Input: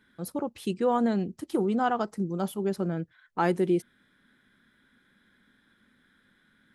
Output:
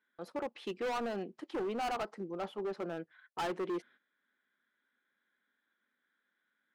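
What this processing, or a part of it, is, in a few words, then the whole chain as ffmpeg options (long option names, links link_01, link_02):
walkie-talkie: -filter_complex "[0:a]highpass=470,lowpass=3000,asoftclip=type=hard:threshold=-32.5dB,agate=range=-14dB:threshold=-59dB:ratio=16:detection=peak,asettb=1/sr,asplit=3[link_01][link_02][link_03];[link_01]atrim=end=2.284[link_04];[link_02]atrim=start=2.28:end=2.77,asetpts=PTS-STARTPTS,afade=type=in:duration=0.004:curve=qsin,afade=type=out:start_time=0.486:duration=0.004:curve=qsin,highshelf=frequency=3900:gain=-5.5[link_05];[link_03]atrim=start=2.766[link_06];[link_04][link_05]acrossfade=duration=0.004:curve1=hsin:curve2=qsin[link_07];[link_07][link_06]acrossfade=duration=0.004:curve1=qsin:curve2=hsin"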